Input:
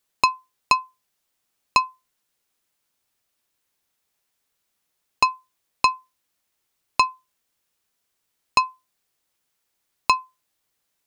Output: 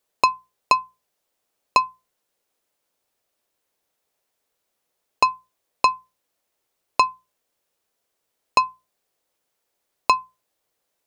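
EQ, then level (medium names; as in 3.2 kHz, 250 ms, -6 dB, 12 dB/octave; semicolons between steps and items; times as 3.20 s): peaking EQ 540 Hz +9.5 dB 1.4 oct; hum notches 60/120/180 Hz; -2.0 dB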